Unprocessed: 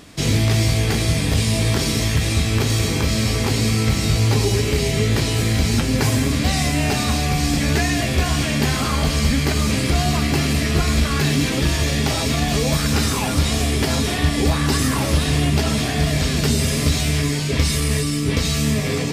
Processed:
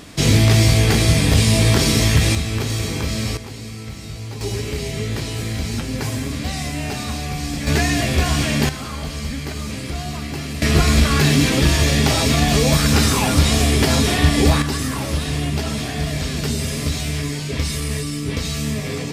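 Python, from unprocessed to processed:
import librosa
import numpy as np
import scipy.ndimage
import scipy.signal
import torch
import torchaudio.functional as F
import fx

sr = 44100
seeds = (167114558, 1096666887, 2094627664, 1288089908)

y = fx.gain(x, sr, db=fx.steps((0.0, 4.0), (2.35, -3.5), (3.37, -14.0), (4.41, -6.0), (7.67, 1.0), (8.69, -8.5), (10.62, 3.5), (14.62, -4.0)))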